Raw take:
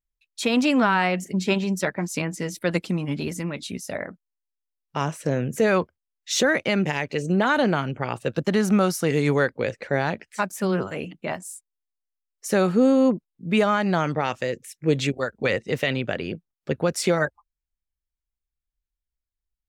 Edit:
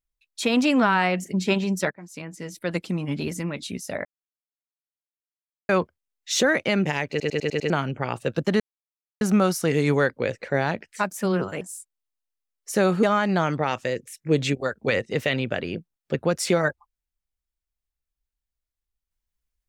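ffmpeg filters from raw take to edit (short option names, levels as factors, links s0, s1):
-filter_complex "[0:a]asplit=13[s0][s1][s2][s3][s4][s5][s6][s7][s8][s9][s10][s11][s12];[s0]atrim=end=1.91,asetpts=PTS-STARTPTS,afade=t=out:st=1.906:d=0.004:c=hsin:silence=0.1[s13];[s1]atrim=start=1.91:end=4.05,asetpts=PTS-STARTPTS,afade=t=in:d=1.28:silence=0.1,afade=t=out:st=2.136:d=0.004:c=hsin[s14];[s2]atrim=start=4.05:end=5.69,asetpts=PTS-STARTPTS,volume=0[s15];[s3]atrim=start=5.69:end=7.202,asetpts=PTS-STARTPTS,afade=t=in:d=0.004:c=hsin[s16];[s4]atrim=start=7.098:end=7.202[s17];[s5]atrim=start=7.098:end=7.202[s18];[s6]atrim=start=7.098:end=7.202[s19];[s7]atrim=start=7.098:end=7.202[s20];[s8]atrim=start=7.098:end=7.202[s21];[s9]atrim=start=7.698:end=8.6,asetpts=PTS-STARTPTS,afade=t=out:st=0.898:d=0.004:c=hsin,apad=pad_dur=0.61[s22];[s10]atrim=start=8.6:end=11.002,asetpts=PTS-STARTPTS,afade=t=in:d=0.004:c=hsin[s23];[s11]atrim=start=11.368:end=12.792[s24];[s12]atrim=start=13.598[s25];[s13][s14][s15][s16]concat=n=4:v=0:a=1[s26];[s26][s17]acrossfade=d=0.004:c1=hsin:c2=hsin[s27];[s27][s18]acrossfade=d=0.004:c1=hsin:c2=hsin[s28];[s28][s19]acrossfade=d=0.004:c1=hsin:c2=hsin[s29];[s29][s20]acrossfade=d=0.004:c1=hsin:c2=hsin[s30];[s30][s21]acrossfade=d=0.004:c1=hsin:c2=hsin[s31];[s22][s23]concat=n=2:v=0:a=1[s32];[s31][s32]acrossfade=d=0.004:c1=hsin:c2=hsin[s33];[s33][s24]acrossfade=d=0.004:c1=hsin:c2=hsin[s34];[s34][s25]acrossfade=d=0.004:c1=hsin:c2=hsin"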